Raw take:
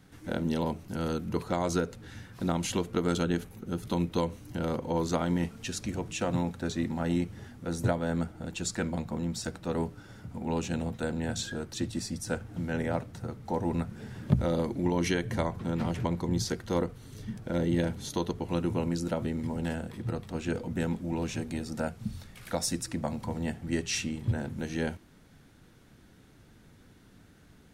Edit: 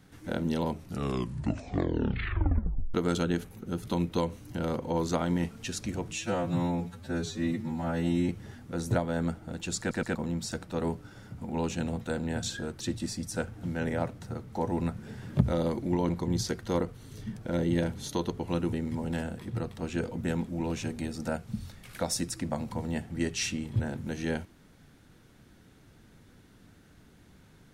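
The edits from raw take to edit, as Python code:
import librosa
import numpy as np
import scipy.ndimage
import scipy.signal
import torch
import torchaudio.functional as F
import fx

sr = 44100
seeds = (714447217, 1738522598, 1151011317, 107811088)

y = fx.edit(x, sr, fx.tape_stop(start_s=0.72, length_s=2.22),
    fx.stretch_span(start_s=6.15, length_s=1.07, factor=2.0),
    fx.stutter_over(start_s=8.72, slice_s=0.12, count=3),
    fx.cut(start_s=15.02, length_s=1.08),
    fx.cut(start_s=18.74, length_s=0.51), tone=tone)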